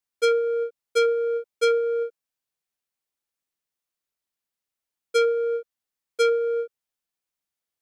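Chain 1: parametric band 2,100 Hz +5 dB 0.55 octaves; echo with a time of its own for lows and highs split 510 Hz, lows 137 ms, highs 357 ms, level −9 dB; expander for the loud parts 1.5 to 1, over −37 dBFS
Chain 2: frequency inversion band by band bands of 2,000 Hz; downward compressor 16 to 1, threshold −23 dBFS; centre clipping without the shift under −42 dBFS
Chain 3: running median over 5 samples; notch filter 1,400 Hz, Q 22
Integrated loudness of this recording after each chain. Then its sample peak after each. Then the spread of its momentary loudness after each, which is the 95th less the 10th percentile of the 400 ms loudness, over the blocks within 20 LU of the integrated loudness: −25.0, −26.5, −24.5 LKFS; −12.5, −16.0, −14.0 dBFS; 18, 7, 8 LU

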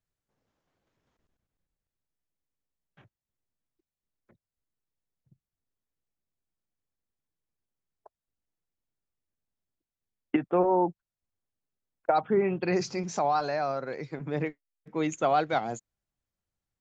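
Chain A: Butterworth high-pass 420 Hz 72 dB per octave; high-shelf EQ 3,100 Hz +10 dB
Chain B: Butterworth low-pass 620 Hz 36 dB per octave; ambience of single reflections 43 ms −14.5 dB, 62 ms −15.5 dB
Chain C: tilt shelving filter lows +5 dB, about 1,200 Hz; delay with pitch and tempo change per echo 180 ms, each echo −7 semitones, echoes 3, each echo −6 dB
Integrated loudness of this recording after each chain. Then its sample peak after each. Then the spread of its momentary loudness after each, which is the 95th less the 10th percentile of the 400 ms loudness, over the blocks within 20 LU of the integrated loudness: −29.5, −31.0, −26.0 LKFS; −12.0, −14.5, −9.0 dBFS; 13, 11, 10 LU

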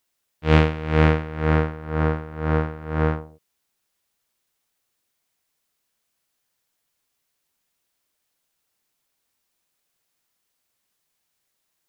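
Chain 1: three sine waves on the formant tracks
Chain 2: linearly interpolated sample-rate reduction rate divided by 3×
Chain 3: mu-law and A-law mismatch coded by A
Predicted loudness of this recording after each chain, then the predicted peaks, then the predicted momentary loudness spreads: −22.0, −22.5, −23.0 LKFS; −7.5, −2.5, −2.0 dBFS; 9, 9, 10 LU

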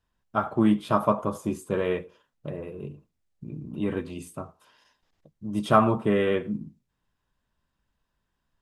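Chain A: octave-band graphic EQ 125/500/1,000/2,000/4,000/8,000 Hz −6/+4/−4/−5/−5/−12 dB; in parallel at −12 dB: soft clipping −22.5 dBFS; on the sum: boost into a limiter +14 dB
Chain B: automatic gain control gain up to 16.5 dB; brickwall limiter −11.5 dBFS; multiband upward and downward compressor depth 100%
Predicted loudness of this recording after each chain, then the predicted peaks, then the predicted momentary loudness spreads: −14.0, −23.5 LKFS; −1.0, −5.0 dBFS; 17, 14 LU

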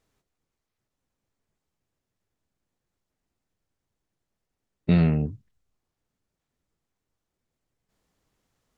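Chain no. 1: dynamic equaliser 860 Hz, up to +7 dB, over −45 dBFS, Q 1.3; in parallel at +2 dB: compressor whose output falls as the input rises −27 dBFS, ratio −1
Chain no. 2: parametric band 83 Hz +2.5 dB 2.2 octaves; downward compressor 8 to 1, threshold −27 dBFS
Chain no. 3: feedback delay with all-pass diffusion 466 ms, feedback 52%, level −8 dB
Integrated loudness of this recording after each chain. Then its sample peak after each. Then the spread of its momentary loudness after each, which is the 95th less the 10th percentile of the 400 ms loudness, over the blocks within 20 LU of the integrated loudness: −20.0, −33.5, −26.5 LKFS; −5.5, −13.0, −9.5 dBFS; 15, 10, 21 LU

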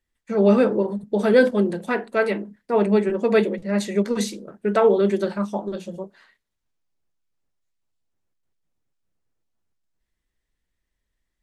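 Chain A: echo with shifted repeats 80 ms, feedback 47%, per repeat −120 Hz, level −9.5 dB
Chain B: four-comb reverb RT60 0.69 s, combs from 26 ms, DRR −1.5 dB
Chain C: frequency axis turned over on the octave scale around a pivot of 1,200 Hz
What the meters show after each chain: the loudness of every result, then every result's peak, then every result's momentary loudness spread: −21.0, −17.5, −23.5 LKFS; −4.5, −1.0, −6.0 dBFS; 12, 12, 13 LU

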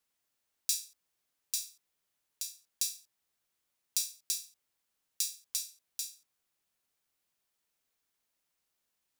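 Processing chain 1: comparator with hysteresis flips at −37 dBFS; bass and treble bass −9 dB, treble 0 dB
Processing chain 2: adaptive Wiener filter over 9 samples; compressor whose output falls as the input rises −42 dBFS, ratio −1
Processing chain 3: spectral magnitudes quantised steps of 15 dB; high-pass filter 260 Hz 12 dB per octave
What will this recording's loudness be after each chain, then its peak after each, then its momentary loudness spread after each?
−48.0, −43.5, −36.0 LKFS; −37.0, −19.0, −10.5 dBFS; 7, 8, 9 LU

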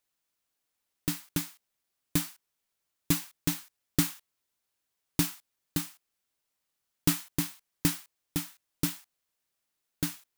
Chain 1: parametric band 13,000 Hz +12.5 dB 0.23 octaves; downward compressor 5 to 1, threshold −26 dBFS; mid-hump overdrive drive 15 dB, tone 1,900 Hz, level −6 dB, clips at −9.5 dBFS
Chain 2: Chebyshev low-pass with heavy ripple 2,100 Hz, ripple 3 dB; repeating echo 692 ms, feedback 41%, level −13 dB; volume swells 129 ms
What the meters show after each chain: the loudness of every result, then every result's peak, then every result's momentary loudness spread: −38.0, −50.5 LKFS; −13.5, −18.0 dBFS; 8, 18 LU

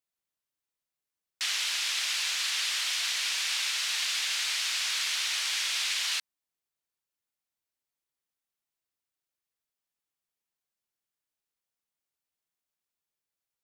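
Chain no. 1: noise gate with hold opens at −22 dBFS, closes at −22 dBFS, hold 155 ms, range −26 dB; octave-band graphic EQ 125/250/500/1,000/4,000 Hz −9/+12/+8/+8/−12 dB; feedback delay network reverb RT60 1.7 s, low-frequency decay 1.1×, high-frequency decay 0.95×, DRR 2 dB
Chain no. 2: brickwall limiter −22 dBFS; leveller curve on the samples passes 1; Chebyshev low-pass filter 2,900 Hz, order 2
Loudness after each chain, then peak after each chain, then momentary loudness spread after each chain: −30.0, −30.5 LKFS; −19.0, −23.0 dBFS; 4, 1 LU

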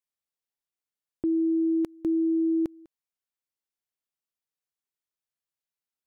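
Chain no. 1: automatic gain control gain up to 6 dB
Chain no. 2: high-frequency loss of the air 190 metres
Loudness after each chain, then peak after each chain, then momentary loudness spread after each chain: −20.5, −27.0 LKFS; −15.0, −21.0 dBFS; 5, 5 LU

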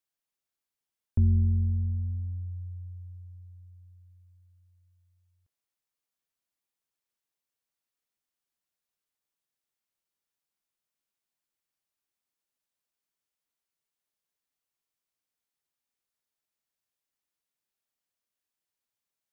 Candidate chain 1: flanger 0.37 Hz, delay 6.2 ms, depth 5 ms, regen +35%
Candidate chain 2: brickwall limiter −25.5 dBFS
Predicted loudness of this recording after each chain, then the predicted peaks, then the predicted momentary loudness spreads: −29.0, −34.0 LKFS; −17.0, −25.5 dBFS; 21, 20 LU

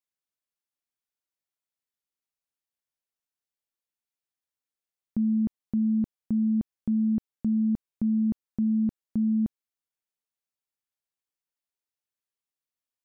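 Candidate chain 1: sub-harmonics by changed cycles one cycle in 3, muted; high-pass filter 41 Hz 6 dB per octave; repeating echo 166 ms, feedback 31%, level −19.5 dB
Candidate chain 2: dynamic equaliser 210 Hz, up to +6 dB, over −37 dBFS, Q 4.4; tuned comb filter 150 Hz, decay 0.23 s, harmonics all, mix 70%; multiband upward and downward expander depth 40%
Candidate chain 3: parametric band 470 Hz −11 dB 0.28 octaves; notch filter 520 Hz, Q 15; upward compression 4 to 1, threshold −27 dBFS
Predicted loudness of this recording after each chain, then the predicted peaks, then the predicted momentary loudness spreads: −29.5, −31.0, −27.5 LKFS; −20.0, −24.0, −14.5 dBFS; 4, 4, 18 LU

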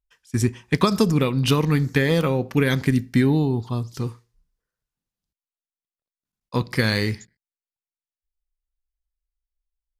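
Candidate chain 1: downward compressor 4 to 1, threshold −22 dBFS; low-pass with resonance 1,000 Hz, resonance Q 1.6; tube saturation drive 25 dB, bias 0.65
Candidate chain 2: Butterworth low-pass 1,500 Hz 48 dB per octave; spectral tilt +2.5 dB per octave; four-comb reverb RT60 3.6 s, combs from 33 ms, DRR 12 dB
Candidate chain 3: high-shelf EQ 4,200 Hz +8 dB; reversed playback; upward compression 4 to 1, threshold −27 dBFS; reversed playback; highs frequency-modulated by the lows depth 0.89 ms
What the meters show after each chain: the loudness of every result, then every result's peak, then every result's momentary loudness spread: −33.0, −27.0, −21.5 LKFS; −21.0, −9.0, −4.0 dBFS; 7, 12, 10 LU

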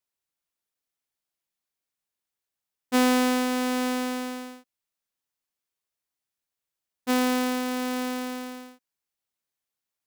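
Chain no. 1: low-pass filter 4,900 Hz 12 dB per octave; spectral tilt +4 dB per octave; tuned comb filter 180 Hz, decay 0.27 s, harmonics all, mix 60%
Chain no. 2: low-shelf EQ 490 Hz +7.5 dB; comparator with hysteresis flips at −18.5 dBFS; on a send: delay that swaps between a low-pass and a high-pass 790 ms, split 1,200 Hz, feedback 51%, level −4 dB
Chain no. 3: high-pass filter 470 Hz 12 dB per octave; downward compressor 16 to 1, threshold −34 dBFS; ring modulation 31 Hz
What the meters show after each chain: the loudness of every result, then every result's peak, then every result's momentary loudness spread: −32.0, −32.0, −44.5 LKFS; −11.5, −20.0, −19.0 dBFS; 16, 20, 7 LU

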